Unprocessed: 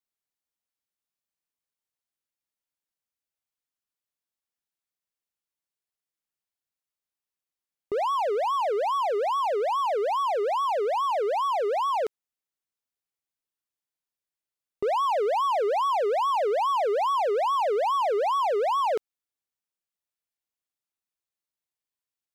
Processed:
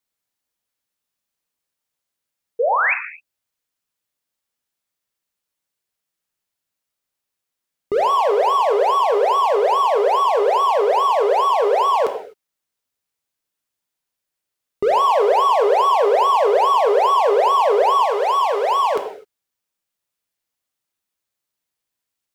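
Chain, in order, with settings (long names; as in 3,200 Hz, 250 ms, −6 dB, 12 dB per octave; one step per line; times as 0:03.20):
0:02.59–0:02.94: sound drawn into the spectrogram rise 440–2,700 Hz −26 dBFS
0:18.05–0:18.96: low-shelf EQ 420 Hz −11 dB
reverb whose tail is shaped and stops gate 280 ms falling, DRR 5.5 dB
level +8 dB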